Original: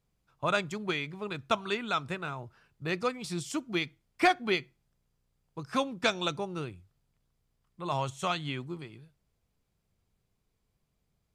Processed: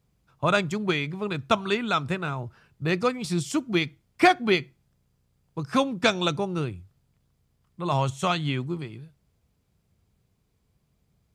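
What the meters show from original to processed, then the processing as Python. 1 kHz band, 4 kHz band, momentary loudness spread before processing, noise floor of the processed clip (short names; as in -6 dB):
+5.5 dB, +5.0 dB, 14 LU, -71 dBFS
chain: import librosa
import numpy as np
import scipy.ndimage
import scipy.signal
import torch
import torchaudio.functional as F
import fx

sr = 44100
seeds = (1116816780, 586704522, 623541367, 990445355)

y = scipy.signal.sosfilt(scipy.signal.butter(2, 52.0, 'highpass', fs=sr, output='sos'), x)
y = fx.low_shelf(y, sr, hz=270.0, db=6.5)
y = F.gain(torch.from_numpy(y), 5.0).numpy()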